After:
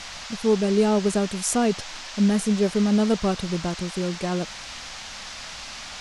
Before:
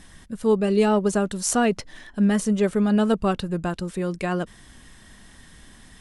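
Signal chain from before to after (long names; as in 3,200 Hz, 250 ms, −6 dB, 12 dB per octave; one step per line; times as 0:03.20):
parametric band 1,900 Hz −7 dB 1.9 octaves
noise in a band 570–6,200 Hz −38 dBFS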